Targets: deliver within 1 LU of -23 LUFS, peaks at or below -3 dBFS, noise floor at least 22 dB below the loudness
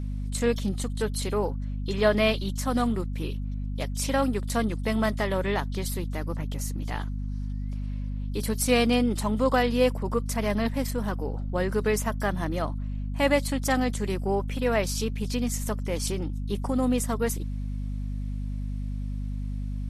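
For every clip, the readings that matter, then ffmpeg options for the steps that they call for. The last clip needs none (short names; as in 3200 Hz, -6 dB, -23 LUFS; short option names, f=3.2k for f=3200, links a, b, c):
hum 50 Hz; harmonics up to 250 Hz; hum level -28 dBFS; loudness -28.0 LUFS; peak -9.5 dBFS; loudness target -23.0 LUFS
-> -af "bandreject=f=50:t=h:w=6,bandreject=f=100:t=h:w=6,bandreject=f=150:t=h:w=6,bandreject=f=200:t=h:w=6,bandreject=f=250:t=h:w=6"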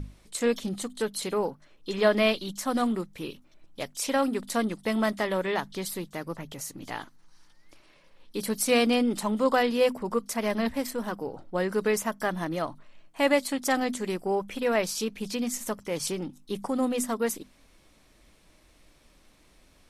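hum none; loudness -28.5 LUFS; peak -10.0 dBFS; loudness target -23.0 LUFS
-> -af "volume=5.5dB"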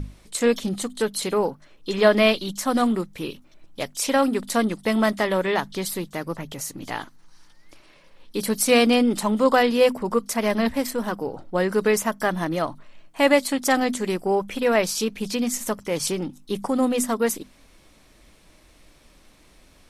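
loudness -23.0 LUFS; peak -4.5 dBFS; noise floor -55 dBFS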